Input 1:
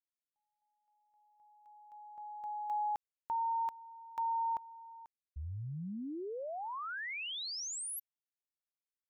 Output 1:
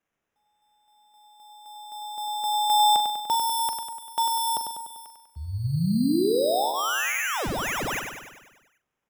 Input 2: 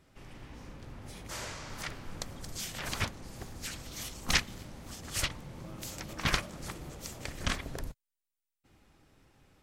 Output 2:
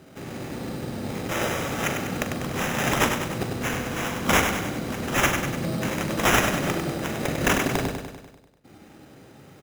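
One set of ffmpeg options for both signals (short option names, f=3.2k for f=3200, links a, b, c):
-filter_complex "[0:a]highpass=150,bandreject=f=1k:w=5.5,acontrast=50,tiltshelf=f=1.2k:g=4,acrusher=samples=10:mix=1:aa=0.000001,acontrast=60,aeval=exprs='(mod(5.31*val(0)+1,2)-1)/5.31':c=same,asplit=2[a][b];[b]adelay=42,volume=-11.5dB[c];[a][c]amix=inputs=2:normalize=0,asplit=2[d][e];[e]aecho=0:1:98|196|294|392|490|588|686|784:0.501|0.291|0.169|0.0978|0.0567|0.0329|0.0191|0.0111[f];[d][f]amix=inputs=2:normalize=0,volume=2dB"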